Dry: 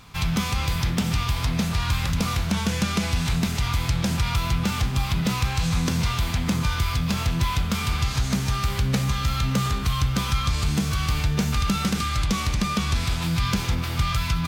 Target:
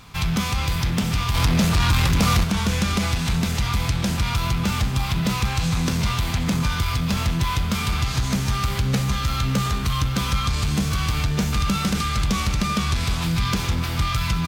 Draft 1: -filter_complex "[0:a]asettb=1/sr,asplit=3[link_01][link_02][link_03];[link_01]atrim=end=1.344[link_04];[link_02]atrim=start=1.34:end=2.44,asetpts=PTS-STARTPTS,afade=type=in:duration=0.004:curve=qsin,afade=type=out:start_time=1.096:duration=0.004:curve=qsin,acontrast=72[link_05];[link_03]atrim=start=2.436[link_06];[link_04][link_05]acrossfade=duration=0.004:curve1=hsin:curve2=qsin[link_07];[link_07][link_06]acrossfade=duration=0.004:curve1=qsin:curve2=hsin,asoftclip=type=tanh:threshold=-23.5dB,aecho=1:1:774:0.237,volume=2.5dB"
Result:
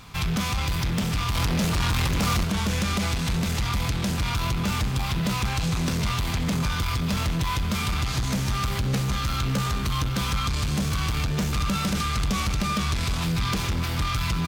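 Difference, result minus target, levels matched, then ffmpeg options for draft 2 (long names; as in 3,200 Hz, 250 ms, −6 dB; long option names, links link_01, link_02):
soft clipping: distortion +7 dB
-filter_complex "[0:a]asettb=1/sr,asplit=3[link_01][link_02][link_03];[link_01]atrim=end=1.344[link_04];[link_02]atrim=start=1.34:end=2.44,asetpts=PTS-STARTPTS,afade=type=in:duration=0.004:curve=qsin,afade=type=out:start_time=1.096:duration=0.004:curve=qsin,acontrast=72[link_05];[link_03]atrim=start=2.436[link_06];[link_04][link_05]acrossfade=duration=0.004:curve1=hsin:curve2=qsin[link_07];[link_07][link_06]acrossfade=duration=0.004:curve1=qsin:curve2=hsin,asoftclip=type=tanh:threshold=-15.5dB,aecho=1:1:774:0.237,volume=2.5dB"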